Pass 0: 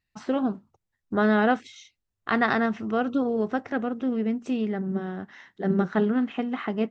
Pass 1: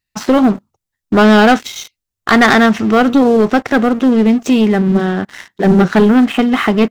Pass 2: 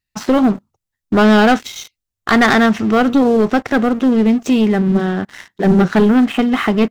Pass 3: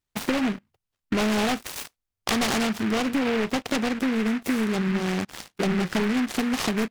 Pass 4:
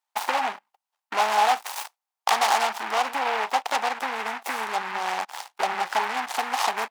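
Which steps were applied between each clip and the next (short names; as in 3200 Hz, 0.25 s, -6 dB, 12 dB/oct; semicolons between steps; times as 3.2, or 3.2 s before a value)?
high shelf 3700 Hz +10 dB; sample leveller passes 3; gain +5.5 dB
low shelf 140 Hz +3.5 dB; gain -3 dB
compressor 6:1, threshold -19 dBFS, peak gain reduction 10.5 dB; noise-modulated delay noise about 1600 Hz, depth 0.16 ms; gain -3.5 dB
resonant high-pass 840 Hz, resonance Q 4.9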